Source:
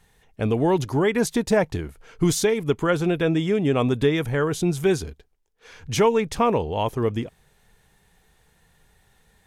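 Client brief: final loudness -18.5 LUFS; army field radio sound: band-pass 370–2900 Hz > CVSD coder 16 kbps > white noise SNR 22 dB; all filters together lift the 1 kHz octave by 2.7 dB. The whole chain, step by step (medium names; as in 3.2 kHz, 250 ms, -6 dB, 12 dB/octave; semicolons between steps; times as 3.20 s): band-pass 370–2900 Hz; peaking EQ 1 kHz +3.5 dB; CVSD coder 16 kbps; white noise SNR 22 dB; trim +7.5 dB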